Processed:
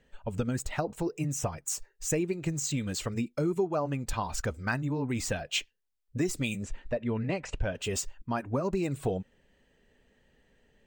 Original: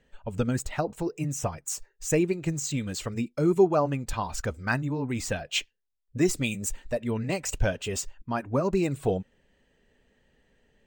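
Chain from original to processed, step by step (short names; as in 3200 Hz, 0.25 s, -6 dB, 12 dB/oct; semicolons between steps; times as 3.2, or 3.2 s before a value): 6.63–7.75 LPF 3100 Hz 12 dB/oct; compressor 4:1, threshold -26 dBFS, peak gain reduction 10 dB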